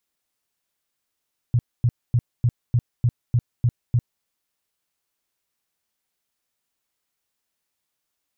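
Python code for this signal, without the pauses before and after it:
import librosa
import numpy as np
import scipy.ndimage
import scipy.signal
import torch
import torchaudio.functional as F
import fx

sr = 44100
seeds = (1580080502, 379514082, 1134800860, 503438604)

y = fx.tone_burst(sr, hz=120.0, cycles=6, every_s=0.3, bursts=9, level_db=-14.0)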